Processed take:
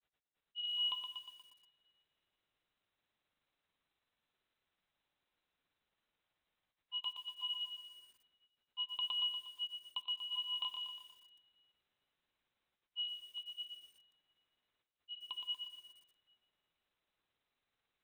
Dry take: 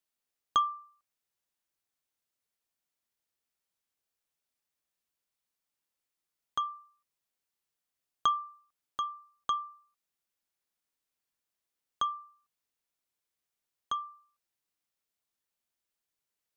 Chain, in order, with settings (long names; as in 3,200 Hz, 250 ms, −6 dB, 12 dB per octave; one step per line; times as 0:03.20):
hum removal 65.14 Hz, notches 37
dynamic equaliser 440 Hz, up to +8 dB, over −58 dBFS, Q 2.2
reversed playback
downward compressor 4 to 1, threshold −47 dBFS, peak gain reduction 20.5 dB
reversed playback
granular cloud 100 ms, spray 292 ms, pitch spread up and down by 0 semitones
wrong playback speed 48 kHz file played as 44.1 kHz
convolution reverb RT60 2.1 s, pre-delay 7 ms, DRR 13 dB
voice inversion scrambler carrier 4,000 Hz
feedback echo at a low word length 119 ms, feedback 55%, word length 12 bits, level −6 dB
level +8 dB